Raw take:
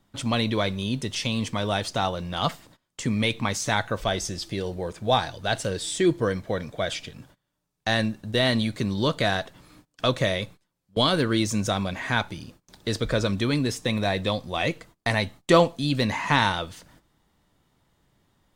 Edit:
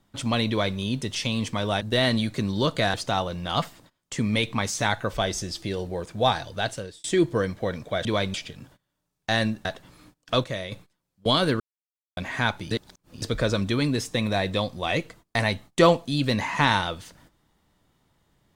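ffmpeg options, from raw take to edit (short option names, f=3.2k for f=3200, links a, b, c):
-filter_complex "[0:a]asplit=13[a][b][c][d][e][f][g][h][i][j][k][l][m];[a]atrim=end=1.812[n];[b]atrim=start=8.228:end=9.362[o];[c]atrim=start=1.808:end=5.91,asetpts=PTS-STARTPTS,afade=t=out:st=3.612:d=0.49[p];[d]atrim=start=5.91:end=6.922,asetpts=PTS-STARTPTS,afade=t=in:d=0.004:c=hsin[q];[e]atrim=start=0.488:end=0.782[r];[f]atrim=start=6.918:end=8.232[s];[g]atrim=start=9.358:end=10.152[t];[h]atrim=start=10.148:end=10.432,asetpts=PTS-STARTPTS,volume=-7.5dB[u];[i]atrim=start=10.428:end=11.31,asetpts=PTS-STARTPTS,afade=t=out:st=0.878:d=0.004:c=hsin[v];[j]atrim=start=11.31:end=11.88,asetpts=PTS-STARTPTS,volume=0[w];[k]atrim=start=11.88:end=12.422,asetpts=PTS-STARTPTS,afade=t=in:d=0.004:c=hsin[x];[l]atrim=start=12.418:end=12.932,asetpts=PTS-STARTPTS,areverse[y];[m]atrim=start=12.928[z];[n][o]acrossfade=d=0.004:c1=hsin:c2=hsin[aa];[p][q]concat=n=2:v=0:a=1[ab];[aa][ab]acrossfade=d=0.004:c1=hsin:c2=hsin[ac];[ac][r]acrossfade=d=0.004:c1=hsin:c2=hsin[ad];[ad][s]acrossfade=d=0.004:c1=hsin:c2=hsin[ae];[ae][t]acrossfade=d=0.004:c1=hsin:c2=hsin[af];[af][u]acrossfade=d=0.004:c1=hsin:c2=hsin[ag];[v][w][x]concat=n=3:v=0:a=1[ah];[ag][ah]acrossfade=d=0.004:c1=hsin:c2=hsin[ai];[ai][y]acrossfade=d=0.004:c1=hsin:c2=hsin[aj];[aj][z]acrossfade=d=0.004:c1=hsin:c2=hsin"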